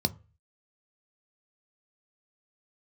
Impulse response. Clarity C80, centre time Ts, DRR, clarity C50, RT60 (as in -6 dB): 28.0 dB, 3 ms, 10.0 dB, 22.5 dB, 0.35 s